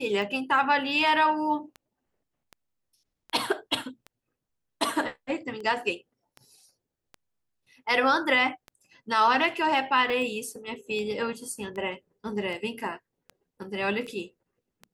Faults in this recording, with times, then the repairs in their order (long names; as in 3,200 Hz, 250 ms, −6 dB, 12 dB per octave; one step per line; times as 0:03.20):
scratch tick 78 rpm
0:10.10: drop-out 2.6 ms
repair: click removal
repair the gap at 0:10.10, 2.6 ms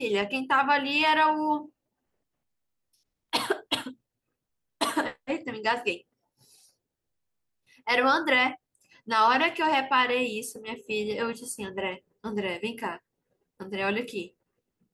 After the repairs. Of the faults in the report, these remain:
none of them is left